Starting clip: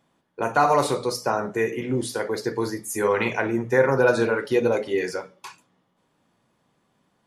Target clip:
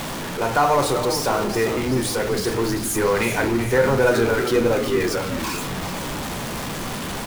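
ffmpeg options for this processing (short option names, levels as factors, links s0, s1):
-filter_complex "[0:a]aeval=exprs='val(0)+0.5*0.075*sgn(val(0))':c=same,lowshelf=f=61:g=7.5,asplit=7[s0][s1][s2][s3][s4][s5][s6];[s1]adelay=388,afreqshift=-130,volume=0.335[s7];[s2]adelay=776,afreqshift=-260,volume=0.184[s8];[s3]adelay=1164,afreqshift=-390,volume=0.101[s9];[s4]adelay=1552,afreqshift=-520,volume=0.0556[s10];[s5]adelay=1940,afreqshift=-650,volume=0.0305[s11];[s6]adelay=2328,afreqshift=-780,volume=0.0168[s12];[s0][s7][s8][s9][s10][s11][s12]amix=inputs=7:normalize=0,volume=0.891"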